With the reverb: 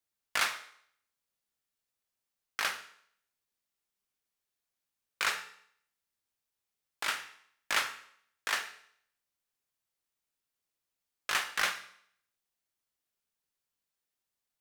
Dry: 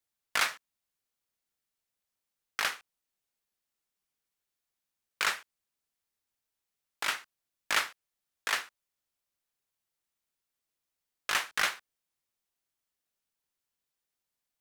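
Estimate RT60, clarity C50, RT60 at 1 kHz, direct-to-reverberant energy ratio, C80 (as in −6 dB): 0.65 s, 12.0 dB, 0.65 s, 7.0 dB, 14.5 dB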